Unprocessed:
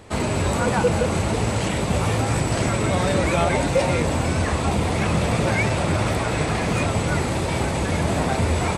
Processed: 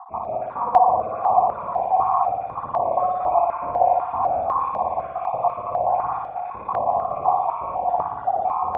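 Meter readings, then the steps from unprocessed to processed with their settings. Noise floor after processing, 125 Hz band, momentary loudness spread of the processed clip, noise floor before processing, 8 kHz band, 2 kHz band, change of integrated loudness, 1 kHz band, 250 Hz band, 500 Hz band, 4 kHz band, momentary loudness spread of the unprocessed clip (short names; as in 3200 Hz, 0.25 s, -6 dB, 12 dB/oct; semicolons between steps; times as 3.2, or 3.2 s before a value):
-34 dBFS, -23.0 dB, 8 LU, -24 dBFS, under -40 dB, under -20 dB, -0.5 dB, +8.0 dB, -20.5 dB, -1.0 dB, under -30 dB, 3 LU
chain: random spectral dropouts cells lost 64%; in parallel at -1 dB: negative-ratio compressor -36 dBFS, ratio -1; on the sum: vocal tract filter a; band shelf 840 Hz +10.5 dB; on a send: flutter echo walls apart 9.9 m, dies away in 1.4 s; on the sum: stepped notch 4 Hz 580–1600 Hz; gain +7 dB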